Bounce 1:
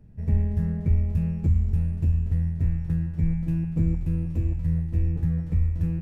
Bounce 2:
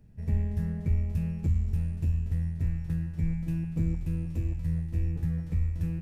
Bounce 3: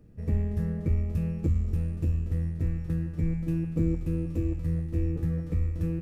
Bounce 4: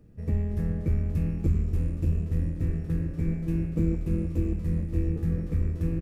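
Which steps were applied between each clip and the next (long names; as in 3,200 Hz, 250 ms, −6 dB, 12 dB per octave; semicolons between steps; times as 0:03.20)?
high-shelf EQ 2,100 Hz +9 dB; level −5 dB
hollow resonant body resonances 330/480/1,200 Hz, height 11 dB, ringing for 30 ms
echo with shifted repeats 303 ms, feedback 48%, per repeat −120 Hz, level −6 dB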